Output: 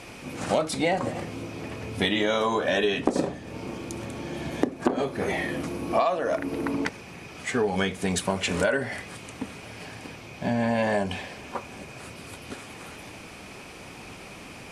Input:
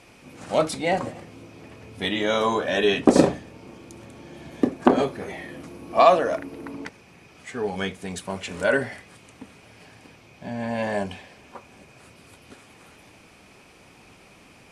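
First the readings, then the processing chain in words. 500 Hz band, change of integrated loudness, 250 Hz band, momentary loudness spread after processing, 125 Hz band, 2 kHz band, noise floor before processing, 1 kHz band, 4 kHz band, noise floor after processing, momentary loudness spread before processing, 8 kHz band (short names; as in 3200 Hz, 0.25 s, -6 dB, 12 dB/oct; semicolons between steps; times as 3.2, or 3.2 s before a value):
-3.0 dB, -4.0 dB, -2.0 dB, 17 LU, +1.5 dB, 0.0 dB, -52 dBFS, -4.0 dB, 0.0 dB, -43 dBFS, 21 LU, +2.0 dB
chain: compressor 12:1, threshold -29 dBFS, peak gain reduction 20 dB; gain +8.5 dB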